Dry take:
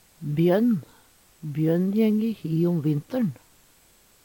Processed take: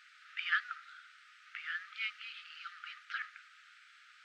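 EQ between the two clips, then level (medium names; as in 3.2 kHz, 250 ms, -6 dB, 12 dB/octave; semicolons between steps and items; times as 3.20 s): brick-wall FIR high-pass 1.2 kHz; tape spacing loss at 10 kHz 41 dB; +14.5 dB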